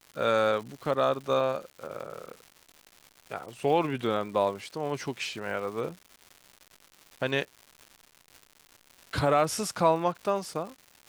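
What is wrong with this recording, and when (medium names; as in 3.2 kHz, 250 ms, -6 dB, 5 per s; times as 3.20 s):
crackle 260 per s -39 dBFS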